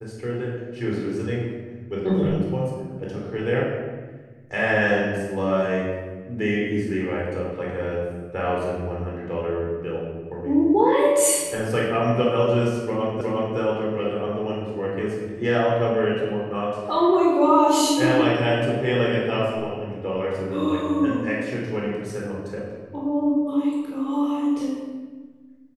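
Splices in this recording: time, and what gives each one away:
13.21 repeat of the last 0.36 s

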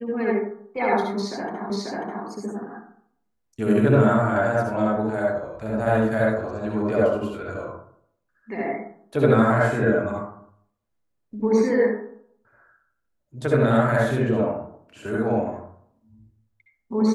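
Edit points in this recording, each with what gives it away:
1.7 repeat of the last 0.54 s

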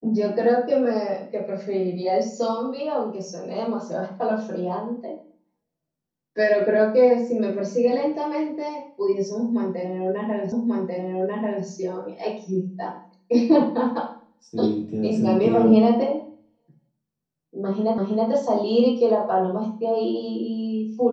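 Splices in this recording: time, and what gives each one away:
10.52 repeat of the last 1.14 s
17.98 repeat of the last 0.32 s

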